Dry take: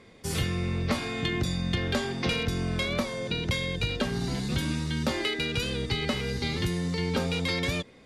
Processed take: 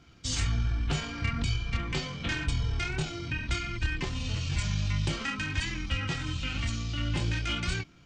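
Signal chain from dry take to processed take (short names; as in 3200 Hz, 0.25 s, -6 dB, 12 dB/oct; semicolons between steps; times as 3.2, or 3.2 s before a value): tone controls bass +7 dB, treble +13 dB; chorus 0.51 Hz, delay 18.5 ms, depth 6.8 ms; pitch shift -7.5 st; gain -3.5 dB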